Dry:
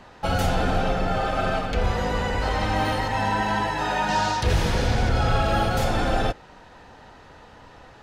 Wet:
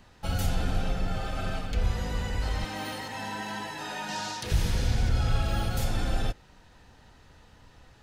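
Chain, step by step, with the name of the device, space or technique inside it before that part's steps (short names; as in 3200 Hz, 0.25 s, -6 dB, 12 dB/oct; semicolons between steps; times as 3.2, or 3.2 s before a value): 2.64–4.52 HPF 210 Hz 12 dB/oct; smiley-face EQ (low shelf 110 Hz +5 dB; bell 740 Hz -8 dB 2.8 oct; high shelf 9100 Hz +9 dB); gain -5.5 dB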